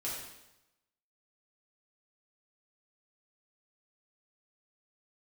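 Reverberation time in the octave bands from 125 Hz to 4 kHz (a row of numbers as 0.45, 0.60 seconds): 1.0, 0.90, 0.90, 0.90, 0.85, 0.85 seconds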